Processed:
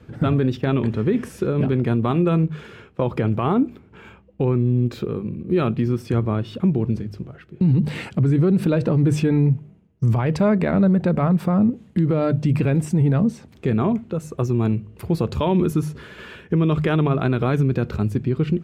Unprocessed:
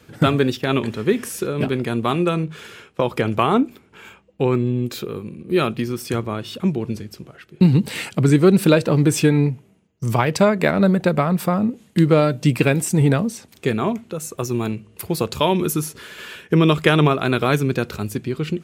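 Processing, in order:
low-pass filter 1,600 Hz 6 dB per octave
low-shelf EQ 190 Hz +11.5 dB
mains-hum notches 50/100/150 Hz
brickwall limiter −11 dBFS, peak gain reduction 12 dB

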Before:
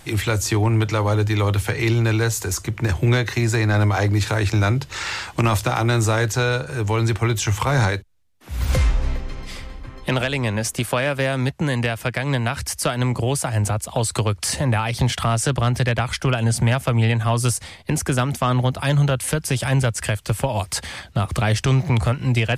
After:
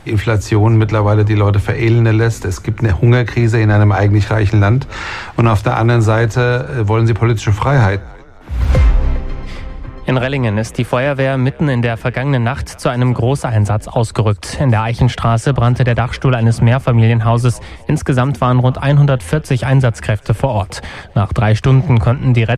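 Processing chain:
low-pass filter 1,500 Hz 6 dB per octave
on a send: echo with shifted repeats 264 ms, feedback 49%, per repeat −62 Hz, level −23 dB
on the sum: level +8 dB

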